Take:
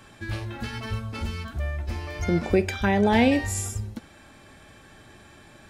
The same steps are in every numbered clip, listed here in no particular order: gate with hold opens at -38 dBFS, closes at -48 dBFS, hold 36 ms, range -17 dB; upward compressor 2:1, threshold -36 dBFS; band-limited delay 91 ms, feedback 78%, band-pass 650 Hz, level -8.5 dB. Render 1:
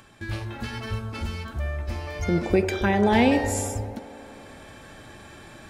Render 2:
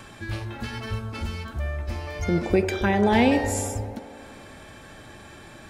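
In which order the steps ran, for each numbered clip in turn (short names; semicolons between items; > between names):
band-limited delay > gate with hold > upward compressor; upward compressor > band-limited delay > gate with hold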